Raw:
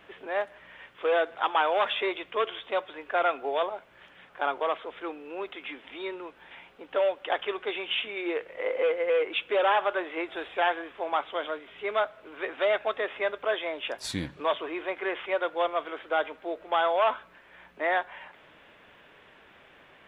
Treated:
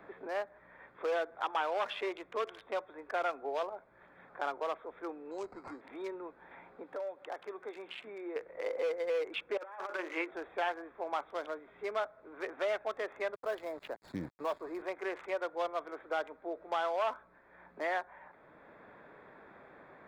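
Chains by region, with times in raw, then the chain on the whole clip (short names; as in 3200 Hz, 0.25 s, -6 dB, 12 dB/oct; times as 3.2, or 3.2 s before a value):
5.31–5.81 high shelf 2400 Hz -7.5 dB + sample-rate reducer 3500 Hz + brick-wall FIR low-pass 9400 Hz
6.83–8.36 HPF 100 Hz + compressor 1.5:1, threshold -46 dBFS
9.57–10.31 notches 60/120/180/240/300/360/420/480/540 Hz + negative-ratio compressor -29 dBFS, ratio -0.5 + speaker cabinet 260–7700 Hz, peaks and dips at 420 Hz -6 dB, 710 Hz -8 dB, 2300 Hz +4 dB
13.34–14.82 high shelf 2300 Hz -8.5 dB + sample gate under -40.5 dBFS
whole clip: Wiener smoothing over 15 samples; three-band squash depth 40%; gain -7 dB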